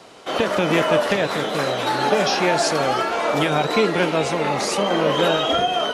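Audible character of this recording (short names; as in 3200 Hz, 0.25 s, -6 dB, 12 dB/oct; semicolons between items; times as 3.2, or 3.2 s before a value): noise floor -28 dBFS; spectral tilt -4.0 dB/oct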